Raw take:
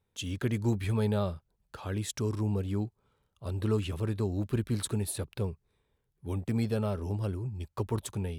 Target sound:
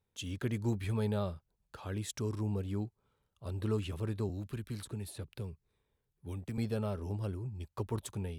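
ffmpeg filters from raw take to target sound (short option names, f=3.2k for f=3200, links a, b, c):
-filter_complex "[0:a]asettb=1/sr,asplit=3[a][b][c];[a]atrim=end=4.294[d];[b]atrim=start=4.29:end=6.58,asetpts=PTS-STARTPTS,afade=t=in:d=0.004:c=qsin,afade=t=out:st=2.286:d=0.004:c=qsin,acrossover=split=220|610|1300|5800[e][f][g][h][i];[e]acompressor=threshold=-34dB:ratio=4[j];[f]acompressor=threshold=-43dB:ratio=4[k];[g]acompressor=threshold=-58dB:ratio=4[l];[h]acompressor=threshold=-48dB:ratio=4[m];[i]acompressor=threshold=-46dB:ratio=4[n];[j][k][l][m][n]amix=inputs=5:normalize=0[o];[c]atrim=start=6.576[p];[d][o]acrossfade=d=0.004:c1=hsin:c2=qsin[q];[q][p]acrossfade=d=0.004:c1=qsin:c2=hsin,volume=-4.5dB"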